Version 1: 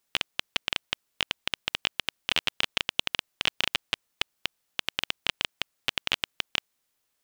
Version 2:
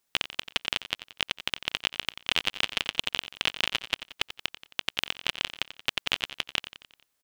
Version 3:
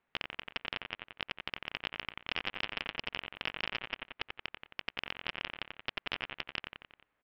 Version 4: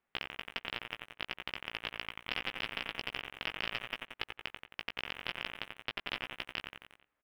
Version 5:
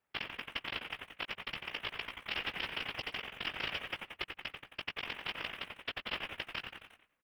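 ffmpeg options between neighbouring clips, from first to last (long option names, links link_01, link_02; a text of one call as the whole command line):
ffmpeg -i in.wav -af "aecho=1:1:89|178|267|356|445:0.211|0.114|0.0616|0.0333|0.018" out.wav
ffmpeg -i in.wav -af "lowpass=frequency=2400:width=0.5412,lowpass=frequency=2400:width=1.3066,aresample=11025,asoftclip=type=tanh:threshold=-25.5dB,aresample=44100,volume=4dB" out.wav
ffmpeg -i in.wav -filter_complex "[0:a]asplit=2[link_01][link_02];[link_02]acrusher=bits=6:mix=0:aa=0.000001,volume=-7.5dB[link_03];[link_01][link_03]amix=inputs=2:normalize=0,asplit=2[link_04][link_05];[link_05]adelay=17,volume=-6dB[link_06];[link_04][link_06]amix=inputs=2:normalize=0,volume=-4.5dB" out.wav
ffmpeg -i in.wav -filter_complex "[0:a]afftfilt=real='hypot(re,im)*cos(2*PI*random(0))':imag='hypot(re,im)*sin(2*PI*random(1))':win_size=512:overlap=0.75,asplit=4[link_01][link_02][link_03][link_04];[link_02]adelay=100,afreqshift=-99,volume=-16.5dB[link_05];[link_03]adelay=200,afreqshift=-198,volume=-25.1dB[link_06];[link_04]adelay=300,afreqshift=-297,volume=-33.8dB[link_07];[link_01][link_05][link_06][link_07]amix=inputs=4:normalize=0,volume=6dB" out.wav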